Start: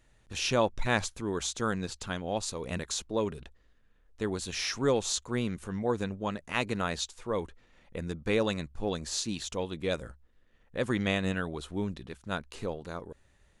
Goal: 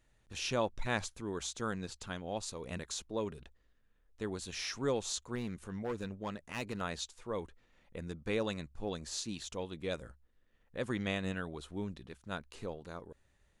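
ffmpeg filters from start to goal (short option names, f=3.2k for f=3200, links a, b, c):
-filter_complex "[0:a]asettb=1/sr,asplit=3[a][b][c];[a]atrim=end=5.354[d];[b]atrim=start=5.35:end=6.81,asetpts=PTS-STARTPTS,afade=t=in:d=0.004:c=qsin,afade=t=out:st=1.456:d=0.004:c=qsin,asoftclip=type=hard:threshold=-25.5dB[e];[c]atrim=start=6.806[f];[d][e]acrossfade=d=0.004:c1=hsin:c2=qsin[g];[g][f]acrossfade=d=0.004:c1=qsin:c2=hsin,volume=-6.5dB"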